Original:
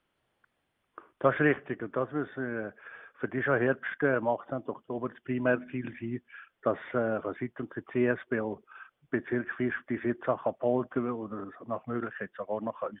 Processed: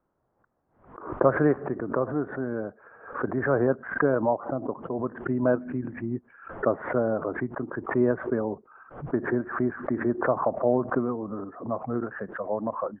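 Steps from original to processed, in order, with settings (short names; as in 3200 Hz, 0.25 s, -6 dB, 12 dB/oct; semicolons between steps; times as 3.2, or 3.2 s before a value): LPF 1200 Hz 24 dB/oct; backwards sustainer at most 110 dB/s; gain +4 dB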